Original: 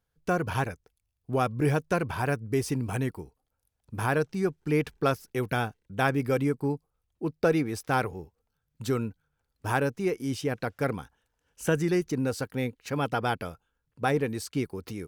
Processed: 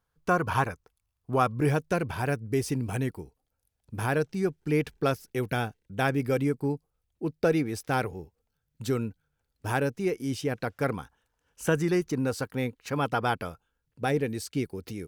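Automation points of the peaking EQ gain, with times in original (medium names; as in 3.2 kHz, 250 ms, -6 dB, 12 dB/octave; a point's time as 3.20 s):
peaking EQ 1.1 kHz 0.75 oct
1.33 s +8 dB
1.93 s -4 dB
10.31 s -4 dB
10.94 s +3 dB
13.45 s +3 dB
14.10 s -7.5 dB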